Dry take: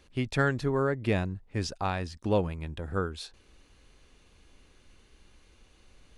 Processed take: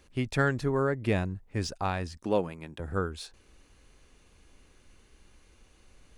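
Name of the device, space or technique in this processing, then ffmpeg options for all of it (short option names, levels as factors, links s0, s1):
exciter from parts: -filter_complex "[0:a]asplit=2[s0][s1];[s1]highpass=3400,asoftclip=type=tanh:threshold=0.01,highpass=3000,volume=0.501[s2];[s0][s2]amix=inputs=2:normalize=0,asettb=1/sr,asplit=3[s3][s4][s5];[s3]atrim=end=2.244[s6];[s4]atrim=start=2.24:end=2.8,asetpts=PTS-STARTPTS,afade=t=in:d=0.004:c=qsin,afade=t=out:st=0.556:d=0.004:c=qsin,highpass=190[s7];[s5]atrim=start=2.796[s8];[s6][s7]acrossfade=d=0.004:c1=hsin:c2=qsin[s9];[s9][s8]acrossfade=d=0.004:c1=qsin:c2=hsin"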